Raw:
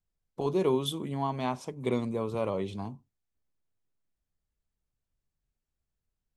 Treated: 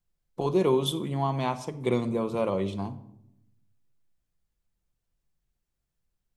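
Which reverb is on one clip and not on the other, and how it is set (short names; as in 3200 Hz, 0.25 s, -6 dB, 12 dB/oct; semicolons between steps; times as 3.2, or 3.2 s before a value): shoebox room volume 2200 m³, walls furnished, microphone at 0.84 m; gain +3 dB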